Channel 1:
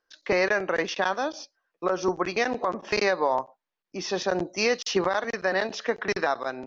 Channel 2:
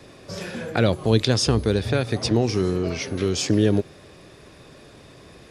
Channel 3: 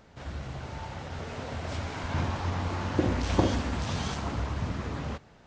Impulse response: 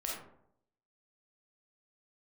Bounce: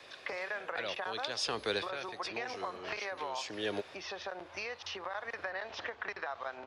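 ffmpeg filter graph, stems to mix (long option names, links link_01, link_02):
-filter_complex "[0:a]acompressor=threshold=-35dB:ratio=2,volume=2.5dB,asplit=2[link_01][link_02];[1:a]highshelf=frequency=3200:gain=11.5,acrossover=split=160|3000[link_03][link_04][link_05];[link_03]acompressor=threshold=-32dB:ratio=6[link_06];[link_06][link_04][link_05]amix=inputs=3:normalize=0,volume=-3.5dB[link_07];[2:a]lowshelf=frequency=130:gain=-11.5,adelay=2400,volume=-15.5dB[link_08];[link_02]apad=whole_len=242839[link_09];[link_07][link_09]sidechaincompress=threshold=-38dB:ratio=8:attack=31:release=447[link_10];[link_01][link_08]amix=inputs=2:normalize=0,equalizer=frequency=84:width=2.8:gain=14.5,acompressor=threshold=-32dB:ratio=6,volume=0dB[link_11];[link_10][link_11]amix=inputs=2:normalize=0,acrossover=split=540 4000:gain=0.112 1 0.112[link_12][link_13][link_14];[link_12][link_13][link_14]amix=inputs=3:normalize=0"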